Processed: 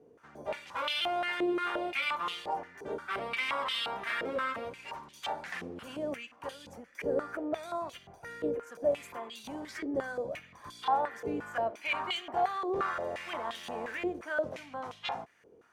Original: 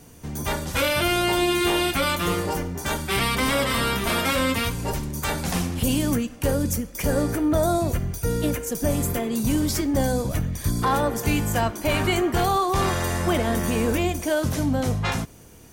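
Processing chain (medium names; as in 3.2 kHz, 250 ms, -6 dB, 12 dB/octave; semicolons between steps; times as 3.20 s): 12.94–14.19 s: word length cut 6-bit, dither none; step-sequenced band-pass 5.7 Hz 440–3200 Hz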